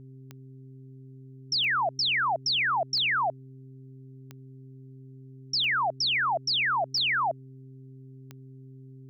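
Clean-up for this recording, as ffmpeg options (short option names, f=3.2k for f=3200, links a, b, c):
-af "adeclick=t=4,bandreject=f=132:t=h:w=4,bandreject=f=264:t=h:w=4,bandreject=f=396:t=h:w=4"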